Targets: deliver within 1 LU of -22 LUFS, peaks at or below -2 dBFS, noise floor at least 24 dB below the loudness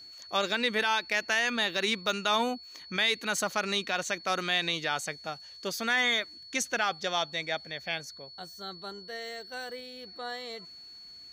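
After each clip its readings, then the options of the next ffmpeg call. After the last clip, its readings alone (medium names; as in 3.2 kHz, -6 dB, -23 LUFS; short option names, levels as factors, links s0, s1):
steady tone 4.4 kHz; tone level -46 dBFS; loudness -30.0 LUFS; peak level -15.0 dBFS; loudness target -22.0 LUFS
-> -af "bandreject=f=4400:w=30"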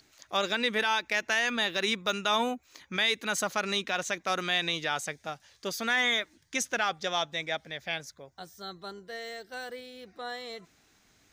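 steady tone not found; loudness -29.5 LUFS; peak level -15.0 dBFS; loudness target -22.0 LUFS
-> -af "volume=2.37"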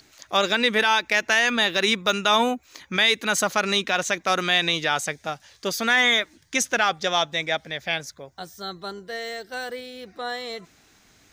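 loudness -22.0 LUFS; peak level -7.5 dBFS; noise floor -58 dBFS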